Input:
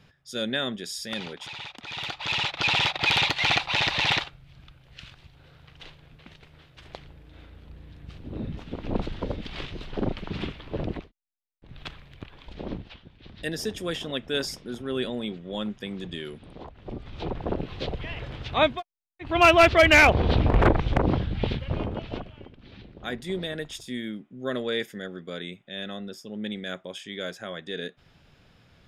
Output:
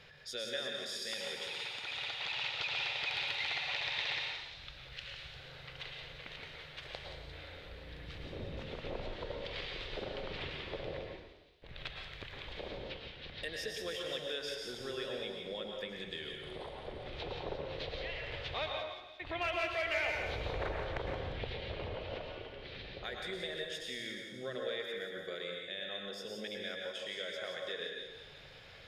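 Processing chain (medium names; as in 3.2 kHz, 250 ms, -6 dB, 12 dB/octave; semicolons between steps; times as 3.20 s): ten-band graphic EQ 125 Hz -3 dB, 250 Hz -9 dB, 500 Hz +9 dB, 2 kHz +8 dB, 4 kHz +7 dB; compression 3:1, threshold -41 dBFS, peak gain reduction 26 dB; on a send: feedback echo behind a high-pass 175 ms, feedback 60%, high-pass 4.3 kHz, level -5.5 dB; on the sum: plate-style reverb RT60 1.1 s, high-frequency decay 0.75×, pre-delay 95 ms, DRR 0.5 dB; trim -3 dB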